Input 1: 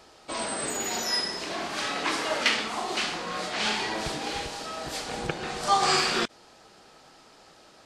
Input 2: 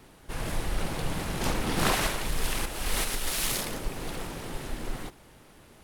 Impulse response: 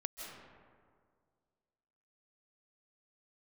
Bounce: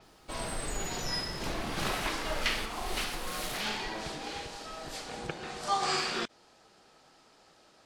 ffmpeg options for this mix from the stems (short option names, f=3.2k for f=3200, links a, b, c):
-filter_complex "[0:a]volume=-7dB[a];[1:a]acrusher=bits=10:mix=0:aa=0.000001,volume=-8.5dB,afade=t=out:st=3.43:d=0.7:silence=0.281838[b];[a][b]amix=inputs=2:normalize=0,adynamicequalizer=threshold=0.00447:dfrequency=7400:dqfactor=0.7:tfrequency=7400:tqfactor=0.7:attack=5:release=100:ratio=0.375:range=2:mode=cutabove:tftype=highshelf"